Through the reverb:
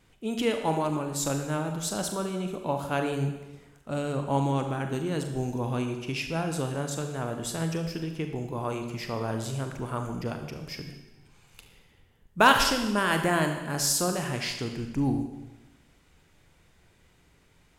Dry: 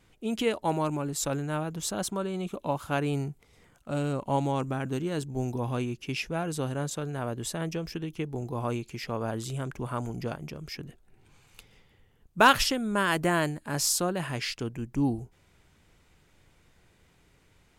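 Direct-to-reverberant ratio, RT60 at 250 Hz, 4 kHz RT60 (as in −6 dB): 5.0 dB, 1.1 s, 1.1 s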